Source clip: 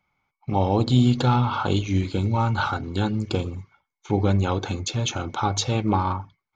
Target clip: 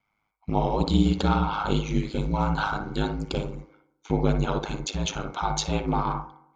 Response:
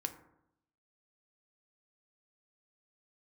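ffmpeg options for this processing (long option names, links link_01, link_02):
-filter_complex "[0:a]aeval=exprs='val(0)*sin(2*PI*52*n/s)':channel_layout=same,asplit=2[link_01][link_02];[link_02]acrossover=split=330 2100:gain=0.0891 1 0.224[link_03][link_04][link_05];[link_03][link_04][link_05]amix=inputs=3:normalize=0[link_06];[1:a]atrim=start_sample=2205,adelay=58[link_07];[link_06][link_07]afir=irnorm=-1:irlink=0,volume=-4.5dB[link_08];[link_01][link_08]amix=inputs=2:normalize=0"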